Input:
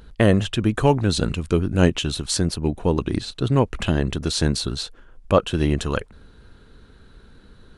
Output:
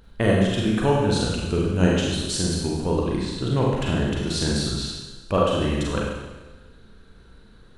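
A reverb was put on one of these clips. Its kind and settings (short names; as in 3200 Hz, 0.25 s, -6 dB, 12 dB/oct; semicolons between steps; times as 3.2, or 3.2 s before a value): Schroeder reverb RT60 1.2 s, combs from 33 ms, DRR -3.5 dB; gain -6 dB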